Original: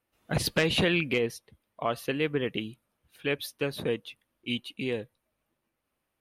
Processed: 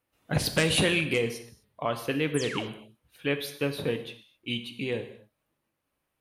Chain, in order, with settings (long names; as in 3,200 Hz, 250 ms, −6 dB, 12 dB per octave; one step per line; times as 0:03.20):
0:00.57–0:01.22: parametric band 9,100 Hz +15 dB 0.68 octaves
0:02.34–0:02.67: sound drawn into the spectrogram fall 340–12,000 Hz −38 dBFS
convolution reverb, pre-delay 3 ms, DRR 7 dB